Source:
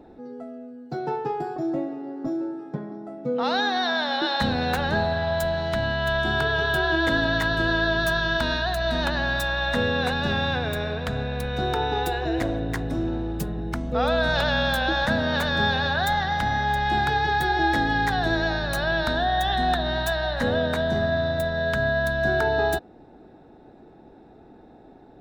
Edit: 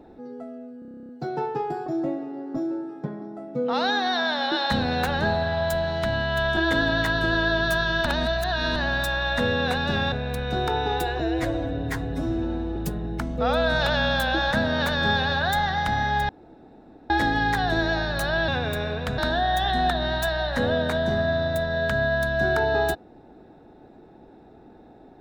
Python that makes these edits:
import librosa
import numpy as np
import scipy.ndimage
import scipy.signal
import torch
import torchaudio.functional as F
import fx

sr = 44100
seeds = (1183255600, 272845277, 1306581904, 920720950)

y = fx.edit(x, sr, fx.stutter(start_s=0.79, slice_s=0.03, count=11),
    fx.cut(start_s=6.27, length_s=0.66),
    fx.reverse_span(start_s=8.42, length_s=0.7),
    fx.move(start_s=10.48, length_s=0.7, to_s=19.02),
    fx.stretch_span(start_s=12.26, length_s=1.04, factor=1.5),
    fx.room_tone_fill(start_s=16.83, length_s=0.81), tone=tone)